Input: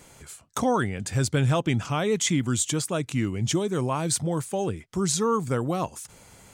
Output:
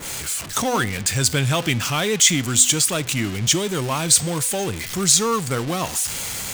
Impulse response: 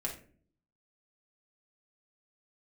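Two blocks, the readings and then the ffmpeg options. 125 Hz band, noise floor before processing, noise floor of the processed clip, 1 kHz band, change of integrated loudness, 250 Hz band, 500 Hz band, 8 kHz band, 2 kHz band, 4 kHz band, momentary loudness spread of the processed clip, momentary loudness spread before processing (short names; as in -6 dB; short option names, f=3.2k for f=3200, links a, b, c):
+2.0 dB, -53 dBFS, -31 dBFS, +3.5 dB, +7.0 dB, +1.5 dB, +1.5 dB, +12.5 dB, +9.0 dB, +12.0 dB, 8 LU, 7 LU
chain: -filter_complex "[0:a]aeval=exprs='val(0)+0.5*0.0299*sgn(val(0))':c=same,bandreject=f=250:t=h:w=4,bandreject=f=500:t=h:w=4,bandreject=f=750:t=h:w=4,bandreject=f=1k:t=h:w=4,bandreject=f=1.25k:t=h:w=4,bandreject=f=1.5k:t=h:w=4,bandreject=f=1.75k:t=h:w=4,bandreject=f=2k:t=h:w=4,bandreject=f=2.25k:t=h:w=4,bandreject=f=2.5k:t=h:w=4,bandreject=f=2.75k:t=h:w=4,bandreject=f=3k:t=h:w=4,bandreject=f=3.25k:t=h:w=4,bandreject=f=3.5k:t=h:w=4,bandreject=f=3.75k:t=h:w=4,bandreject=f=4k:t=h:w=4,bandreject=f=4.25k:t=h:w=4,bandreject=f=4.5k:t=h:w=4,bandreject=f=4.75k:t=h:w=4,bandreject=f=5k:t=h:w=4,bandreject=f=5.25k:t=h:w=4,bandreject=f=5.5k:t=h:w=4,bandreject=f=5.75k:t=h:w=4,bandreject=f=6k:t=h:w=4,bandreject=f=6.25k:t=h:w=4,bandreject=f=6.5k:t=h:w=4,bandreject=f=6.75k:t=h:w=4,bandreject=f=7k:t=h:w=4,bandreject=f=7.25k:t=h:w=4,bandreject=f=7.5k:t=h:w=4,bandreject=f=7.75k:t=h:w=4,bandreject=f=8k:t=h:w=4,bandreject=f=8.25k:t=h:w=4,bandreject=f=8.5k:t=h:w=4,bandreject=f=8.75k:t=h:w=4,anlmdn=0.1,acrossover=split=1400[a][b];[b]acontrast=41[c];[a][c]amix=inputs=2:normalize=0,adynamicequalizer=threshold=0.0141:dfrequency=1900:dqfactor=0.7:tfrequency=1900:tqfactor=0.7:attack=5:release=100:ratio=0.375:range=2.5:mode=boostabove:tftype=highshelf"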